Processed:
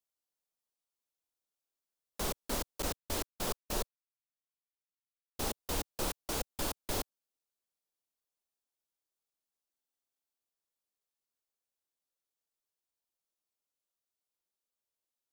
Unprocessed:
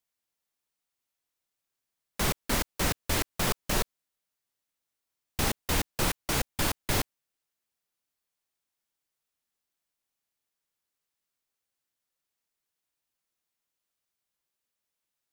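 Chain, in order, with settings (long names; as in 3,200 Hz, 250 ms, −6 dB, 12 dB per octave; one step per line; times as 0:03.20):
0:02.82–0:05.45: noise gate −30 dBFS, range −46 dB
graphic EQ with 10 bands 125 Hz −9 dB, 500 Hz +3 dB, 2,000 Hz −7 dB
buffer that repeats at 0:09.71, samples 2,048, times 13
level −6.5 dB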